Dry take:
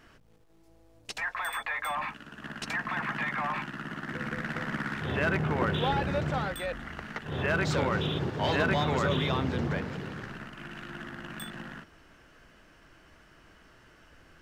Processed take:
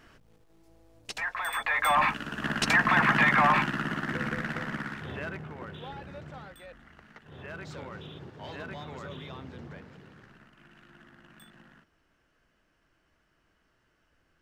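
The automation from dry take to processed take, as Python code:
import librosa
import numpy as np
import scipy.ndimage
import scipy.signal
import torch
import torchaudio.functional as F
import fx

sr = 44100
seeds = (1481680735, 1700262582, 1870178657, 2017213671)

y = fx.gain(x, sr, db=fx.line((1.44, 0.5), (1.99, 10.0), (3.52, 10.0), (4.85, -2.5), (5.54, -14.0)))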